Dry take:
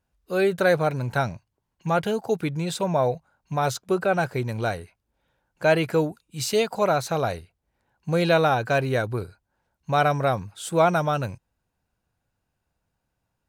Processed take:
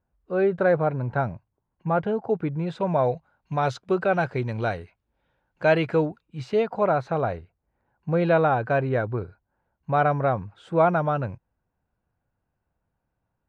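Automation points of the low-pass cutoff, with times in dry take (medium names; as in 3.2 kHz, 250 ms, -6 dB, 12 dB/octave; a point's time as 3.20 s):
2.54 s 1.4 kHz
3.14 s 3.3 kHz
5.78 s 3.3 kHz
6.47 s 1.7 kHz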